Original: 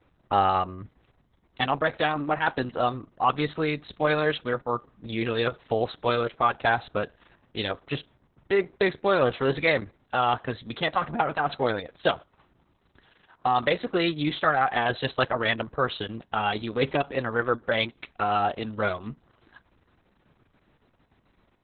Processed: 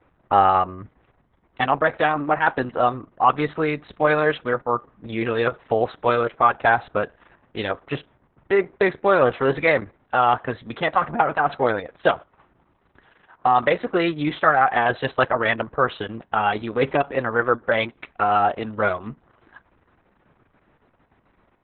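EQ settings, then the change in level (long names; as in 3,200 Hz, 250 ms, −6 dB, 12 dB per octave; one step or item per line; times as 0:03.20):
low-pass filter 2,100 Hz 12 dB per octave
high-frequency loss of the air 55 metres
low-shelf EQ 370 Hz −6.5 dB
+7.5 dB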